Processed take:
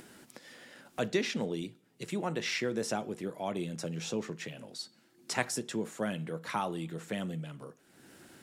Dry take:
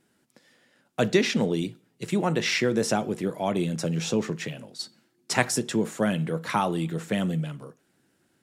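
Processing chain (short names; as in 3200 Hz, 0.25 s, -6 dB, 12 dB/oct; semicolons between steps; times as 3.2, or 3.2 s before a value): bell 120 Hz -3.5 dB 2 oct; upward compressor, threshold -28 dBFS; gain -8 dB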